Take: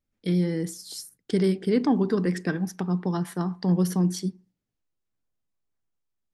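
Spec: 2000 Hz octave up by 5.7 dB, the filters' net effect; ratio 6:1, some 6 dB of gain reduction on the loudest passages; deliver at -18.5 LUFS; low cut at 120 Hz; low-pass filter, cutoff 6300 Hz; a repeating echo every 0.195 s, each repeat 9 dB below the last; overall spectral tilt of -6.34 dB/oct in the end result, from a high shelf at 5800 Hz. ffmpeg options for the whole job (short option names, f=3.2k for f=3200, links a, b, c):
-af "highpass=120,lowpass=6.3k,equalizer=f=2k:t=o:g=7.5,highshelf=f=5.8k:g=-4.5,acompressor=threshold=-24dB:ratio=6,aecho=1:1:195|390|585|780:0.355|0.124|0.0435|0.0152,volume=11.5dB"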